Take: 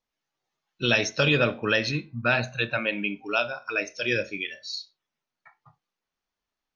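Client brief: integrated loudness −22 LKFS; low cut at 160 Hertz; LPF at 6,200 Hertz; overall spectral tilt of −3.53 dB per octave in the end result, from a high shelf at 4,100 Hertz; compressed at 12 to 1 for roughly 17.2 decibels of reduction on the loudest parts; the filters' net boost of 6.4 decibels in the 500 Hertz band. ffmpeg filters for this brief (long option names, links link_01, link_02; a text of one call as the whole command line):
ffmpeg -i in.wav -af "highpass=160,lowpass=6200,equalizer=frequency=500:width_type=o:gain=7.5,highshelf=frequency=4100:gain=7.5,acompressor=threshold=-31dB:ratio=12,volume=13.5dB" out.wav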